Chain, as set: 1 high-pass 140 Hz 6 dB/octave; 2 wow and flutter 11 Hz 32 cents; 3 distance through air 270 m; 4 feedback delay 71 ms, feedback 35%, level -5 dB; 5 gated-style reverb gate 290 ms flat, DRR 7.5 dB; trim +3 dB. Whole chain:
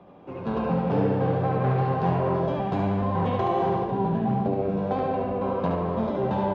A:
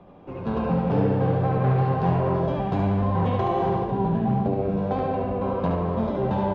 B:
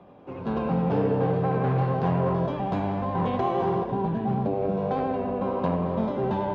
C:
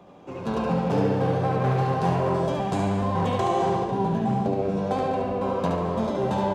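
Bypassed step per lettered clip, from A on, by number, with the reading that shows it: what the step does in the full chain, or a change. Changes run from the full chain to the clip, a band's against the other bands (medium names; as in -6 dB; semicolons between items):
1, 125 Hz band +3.0 dB; 4, echo-to-direct -2.5 dB to -7.5 dB; 3, 4 kHz band +5.5 dB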